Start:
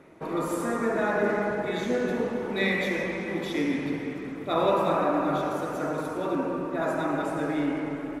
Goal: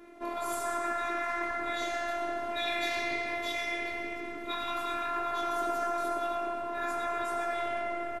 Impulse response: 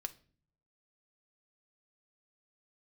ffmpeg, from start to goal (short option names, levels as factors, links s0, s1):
-filter_complex "[0:a]asettb=1/sr,asplit=3[s0][s1][s2];[s0]atrim=end=2.884[s3];[s1]atrim=start=2.88:end=3.36,asetpts=PTS-STARTPTS,afade=t=in:d=0.004:c=qsin,afade=t=out:st=0.476:d=0.004:c=qsin,equalizer=f=4400:t=o:w=0.42:g=9[s4];[s2]atrim=start=3.356[s5];[s3][s4]acrossfade=d=0.004:c1=hsin:c2=qsin[s6];[s6][s5]acrossfade=d=0.004:c1=qsin:c2=hsin,afftfilt=real='re*lt(hypot(re,im),0.126)':imag='im*lt(hypot(re,im),0.126)':win_size=1024:overlap=0.75,flanger=delay=18:depth=5.4:speed=1.9,afftfilt=real='hypot(re,im)*cos(PI*b)':imag='0':win_size=512:overlap=0.75,asplit=2[s7][s8];[s8]adelay=132,lowpass=f=2600:p=1,volume=0.473,asplit=2[s9][s10];[s10]adelay=132,lowpass=f=2600:p=1,volume=0.55,asplit=2[s11][s12];[s12]adelay=132,lowpass=f=2600:p=1,volume=0.55,asplit=2[s13][s14];[s14]adelay=132,lowpass=f=2600:p=1,volume=0.55,asplit=2[s15][s16];[s16]adelay=132,lowpass=f=2600:p=1,volume=0.55,asplit=2[s17][s18];[s18]adelay=132,lowpass=f=2600:p=1,volume=0.55,asplit=2[s19][s20];[s20]adelay=132,lowpass=f=2600:p=1,volume=0.55[s21];[s7][s9][s11][s13][s15][s17][s19][s21]amix=inputs=8:normalize=0,volume=2.24"